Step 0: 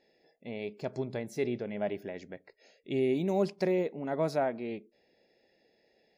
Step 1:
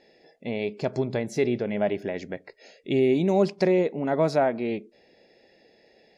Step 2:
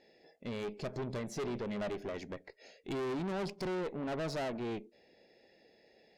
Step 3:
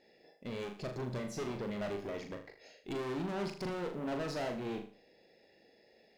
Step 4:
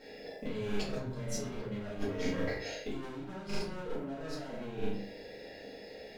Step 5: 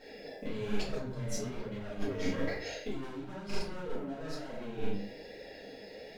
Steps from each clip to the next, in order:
LPF 8200 Hz 12 dB/oct; in parallel at -2 dB: compressor, threshold -37 dBFS, peak gain reduction 13.5 dB; on the sum: gain +5.5 dB
tube stage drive 30 dB, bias 0.5; gain -4 dB
in parallel at -12 dB: short-mantissa float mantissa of 2-bit; on the sum: flutter echo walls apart 6.8 m, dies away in 0.42 s; gain -3.5 dB
negative-ratio compressor -48 dBFS, ratio -1; shoebox room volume 31 m³, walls mixed, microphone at 1.4 m
flange 1.1 Hz, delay 1 ms, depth 9.9 ms, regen +46%; gain +4 dB

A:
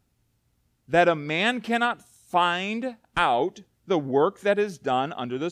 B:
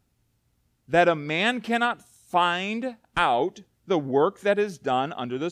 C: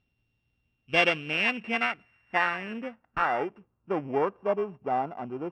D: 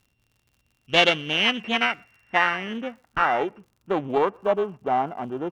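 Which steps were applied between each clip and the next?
nothing audible
sample sorter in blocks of 16 samples; low-pass sweep 3500 Hz -> 950 Hz, 0.5–4.36; gain -6.5 dB
speakerphone echo 0.12 s, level -30 dB; crackle 76/s -53 dBFS; Doppler distortion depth 0.21 ms; gain +5 dB

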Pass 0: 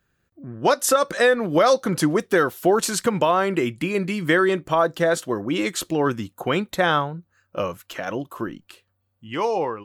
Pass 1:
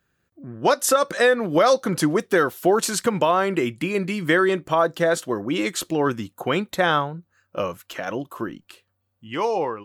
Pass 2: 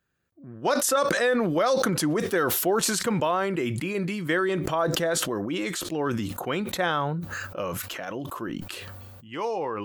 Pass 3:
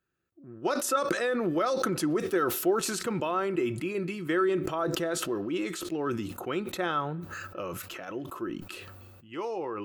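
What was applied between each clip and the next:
low shelf 66 Hz -7 dB
sustainer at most 21 dB/s; gain -6.5 dB
small resonant body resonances 350/1300/2600 Hz, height 9 dB, ringing for 35 ms; on a send at -22 dB: reverb RT60 1.6 s, pre-delay 6 ms; on the sum: gain -7 dB

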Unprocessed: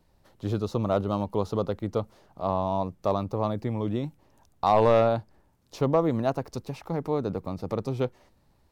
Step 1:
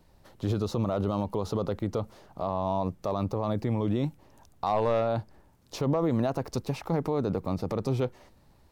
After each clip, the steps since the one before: limiter -22.5 dBFS, peak gain reduction 11 dB; gain +4.5 dB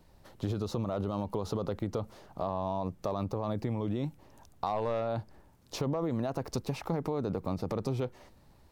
compressor, threshold -28 dBFS, peak gain reduction 6.5 dB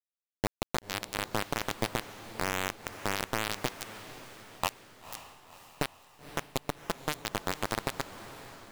bit-crush 4-bit; diffused feedback echo 0.514 s, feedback 54%, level -13 dB; gain +1.5 dB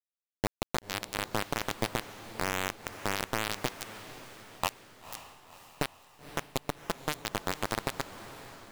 nothing audible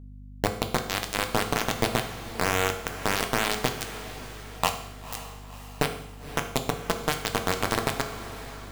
hum 50 Hz, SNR 13 dB; reverb RT60 0.70 s, pre-delay 3 ms, DRR 4.5 dB; gain +5.5 dB

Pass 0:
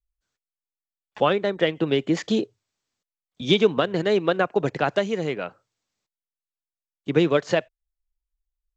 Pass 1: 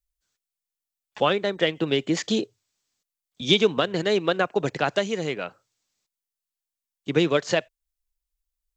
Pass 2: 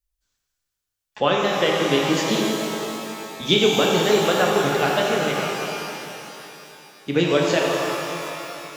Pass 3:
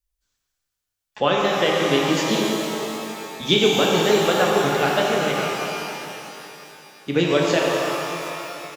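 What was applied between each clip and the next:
high shelf 3200 Hz +10 dB; gain -2 dB
shimmer reverb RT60 3.2 s, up +12 st, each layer -8 dB, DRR -2 dB
speakerphone echo 0.14 s, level -8 dB

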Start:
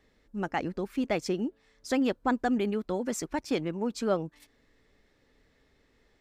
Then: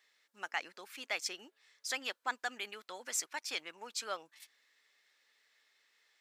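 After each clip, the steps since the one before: Bessel high-pass 2000 Hz, order 2; gain +3 dB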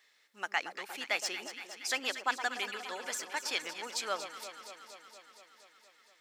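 de-esser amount 75%; echo with dull and thin repeats by turns 0.117 s, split 1200 Hz, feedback 84%, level -9 dB; gain +4.5 dB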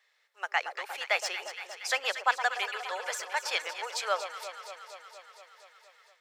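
steep high-pass 470 Hz 36 dB/oct; high shelf 3100 Hz -8 dB; AGC gain up to 7 dB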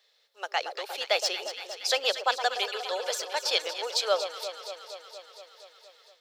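graphic EQ 250/500/1000/2000/4000/8000 Hz +4/+4/-6/-11/+8/-5 dB; gain +5.5 dB

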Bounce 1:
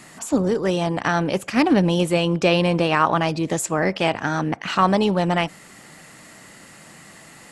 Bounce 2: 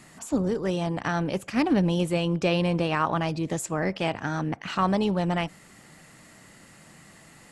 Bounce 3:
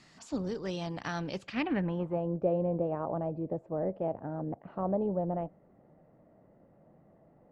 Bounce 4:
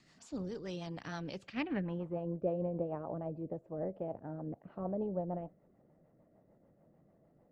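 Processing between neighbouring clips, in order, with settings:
low shelf 160 Hz +8 dB; gain -7.5 dB
low-pass sweep 4900 Hz -> 600 Hz, 1.4–2.3; gain -9 dB
rotary speaker horn 6.7 Hz; gain -4 dB

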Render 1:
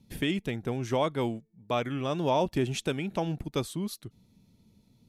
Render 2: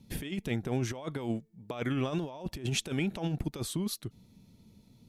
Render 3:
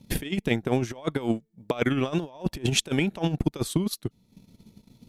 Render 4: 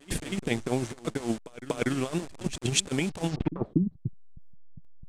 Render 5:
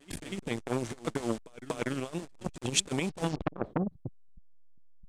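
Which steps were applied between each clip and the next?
negative-ratio compressor -32 dBFS, ratio -0.5
bell 90 Hz -4 dB 1.4 oct; transient shaper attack +8 dB, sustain -9 dB; gain +5 dB
level-crossing sampler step -33 dBFS; low-pass sweep 8500 Hz -> 160 Hz, 3.27–3.85; pre-echo 0.24 s -15.5 dB; gain -3.5 dB
random-step tremolo; core saturation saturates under 990 Hz; gain +2 dB

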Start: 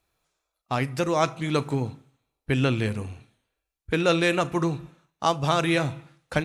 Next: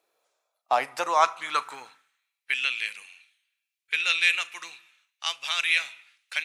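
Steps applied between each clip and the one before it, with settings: high-pass sweep 460 Hz -> 2400 Hz, 0.07–2.64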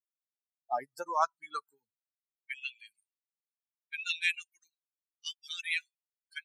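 per-bin expansion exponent 3; gain -4.5 dB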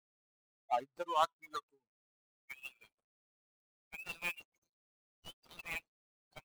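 median filter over 25 samples

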